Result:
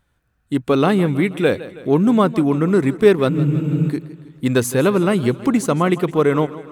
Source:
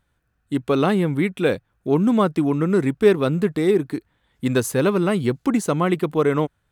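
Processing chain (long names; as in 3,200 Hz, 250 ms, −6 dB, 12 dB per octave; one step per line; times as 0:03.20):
frozen spectrum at 0:03.31, 0.59 s
feedback echo with a swinging delay time 161 ms, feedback 56%, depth 75 cents, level −16.5 dB
level +3 dB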